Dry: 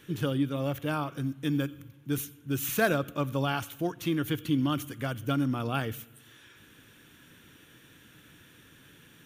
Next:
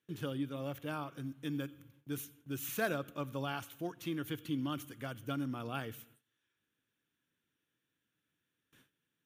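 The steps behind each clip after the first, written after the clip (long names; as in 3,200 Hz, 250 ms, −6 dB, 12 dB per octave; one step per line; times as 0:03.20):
noise gate with hold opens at −42 dBFS
low-shelf EQ 80 Hz −9.5 dB
level −8.5 dB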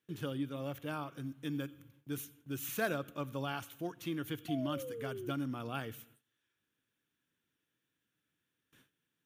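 sound drawn into the spectrogram fall, 0:04.48–0:05.32, 340–720 Hz −43 dBFS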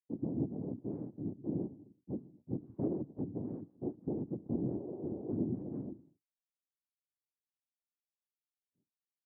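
downward expander −55 dBFS
cochlear-implant simulation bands 4
transistor ladder low-pass 430 Hz, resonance 40%
level +8.5 dB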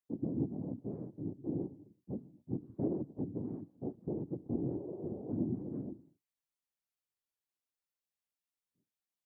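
flanger 0.33 Hz, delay 0.1 ms, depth 2.5 ms, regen −70%
level +4 dB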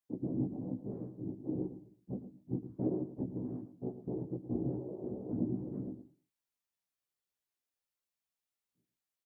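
double-tracking delay 16 ms −2 dB
single-tap delay 111 ms −12.5 dB
level −2 dB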